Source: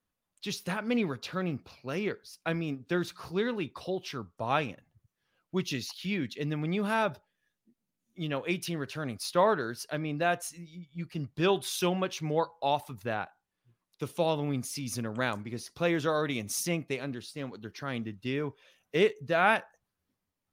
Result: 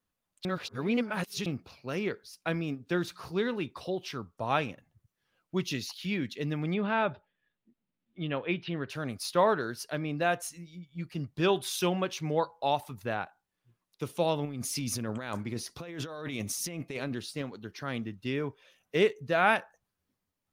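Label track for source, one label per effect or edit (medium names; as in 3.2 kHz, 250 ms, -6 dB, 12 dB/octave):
0.450000	1.460000	reverse
6.740000	8.900000	inverse Chebyshev low-pass stop band from 7 kHz
14.450000	17.420000	compressor with a negative ratio -36 dBFS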